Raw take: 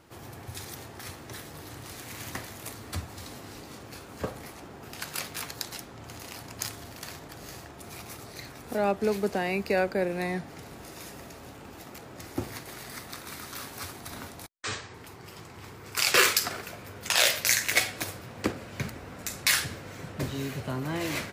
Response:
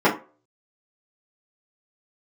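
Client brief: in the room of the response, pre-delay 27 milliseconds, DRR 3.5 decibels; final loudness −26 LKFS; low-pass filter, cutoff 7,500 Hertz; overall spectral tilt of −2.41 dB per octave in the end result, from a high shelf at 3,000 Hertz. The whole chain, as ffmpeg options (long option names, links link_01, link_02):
-filter_complex "[0:a]lowpass=7500,highshelf=frequency=3000:gain=5.5,asplit=2[link_01][link_02];[1:a]atrim=start_sample=2205,adelay=27[link_03];[link_02][link_03]afir=irnorm=-1:irlink=0,volume=-24.5dB[link_04];[link_01][link_04]amix=inputs=2:normalize=0,volume=1dB"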